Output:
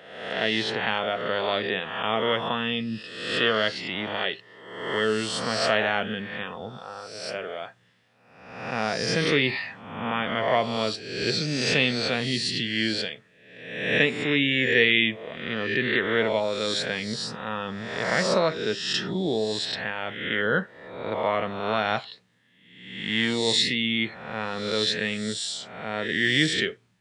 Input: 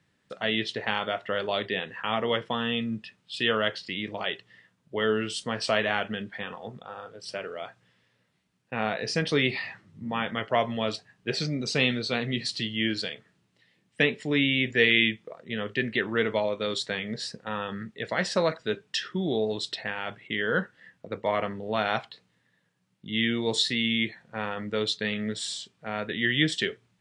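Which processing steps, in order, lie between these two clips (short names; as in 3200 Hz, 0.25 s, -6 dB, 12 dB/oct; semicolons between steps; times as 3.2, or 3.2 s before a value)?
spectral swells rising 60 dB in 0.97 s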